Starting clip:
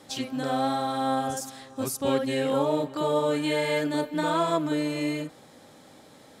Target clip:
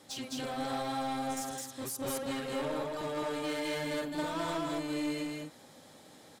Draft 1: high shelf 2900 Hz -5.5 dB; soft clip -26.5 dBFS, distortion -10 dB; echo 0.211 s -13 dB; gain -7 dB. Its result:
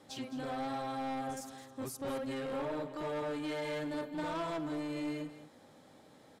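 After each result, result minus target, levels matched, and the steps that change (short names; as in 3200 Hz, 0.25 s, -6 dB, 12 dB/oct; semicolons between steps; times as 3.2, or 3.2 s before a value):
echo-to-direct -12 dB; 8000 Hz band -6.5 dB
change: echo 0.211 s -1 dB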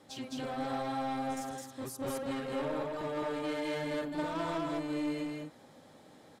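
8000 Hz band -6.5 dB
change: high shelf 2900 Hz +4.5 dB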